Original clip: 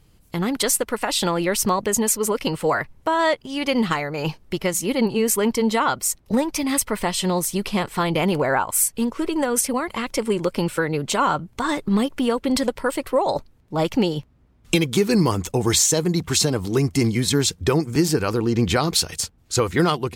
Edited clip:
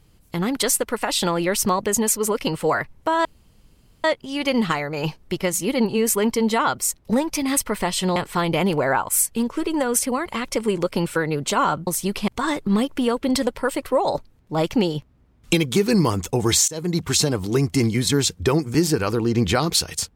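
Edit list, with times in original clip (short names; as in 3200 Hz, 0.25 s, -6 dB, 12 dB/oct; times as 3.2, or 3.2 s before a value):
3.25 insert room tone 0.79 s
7.37–7.78 move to 11.49
15.89–16.18 fade in, from -22.5 dB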